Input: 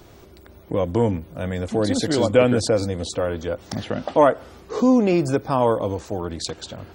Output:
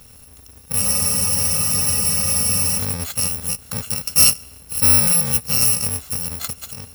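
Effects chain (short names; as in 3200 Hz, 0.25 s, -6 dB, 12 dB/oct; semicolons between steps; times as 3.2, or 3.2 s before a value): FFT order left unsorted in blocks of 128 samples; spectral freeze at 0.83, 1.94 s; gain +2 dB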